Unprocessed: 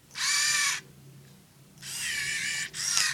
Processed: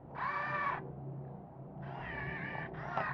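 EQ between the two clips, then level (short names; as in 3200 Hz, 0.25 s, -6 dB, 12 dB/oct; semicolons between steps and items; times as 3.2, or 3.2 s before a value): synth low-pass 750 Hz, resonance Q 3.4; air absorption 300 m; notches 50/100/150/200 Hz; +7.0 dB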